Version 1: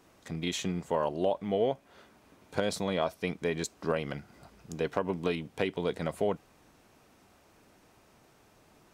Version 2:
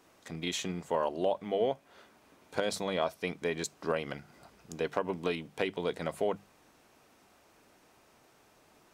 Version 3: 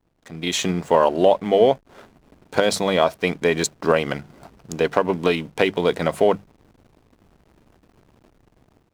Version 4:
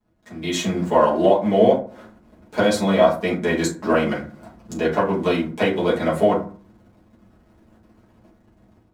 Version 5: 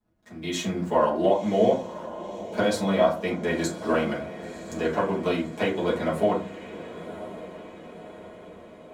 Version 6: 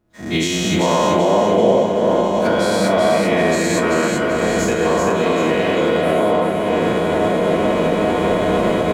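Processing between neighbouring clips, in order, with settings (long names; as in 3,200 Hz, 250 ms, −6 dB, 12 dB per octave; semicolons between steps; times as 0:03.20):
low-shelf EQ 230 Hz −7 dB; mains-hum notches 50/100/150/200 Hz
slack as between gear wheels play −51 dBFS; automatic gain control gain up to 13 dB; level +1.5 dB
convolution reverb RT60 0.40 s, pre-delay 5 ms, DRR −7.5 dB; level −8.5 dB
feedback delay with all-pass diffusion 1,042 ms, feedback 56%, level −13.5 dB; level −5.5 dB
every bin's largest magnitude spread in time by 240 ms; camcorder AGC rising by 40 dB per second; repeating echo 387 ms, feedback 44%, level −4 dB; level −1 dB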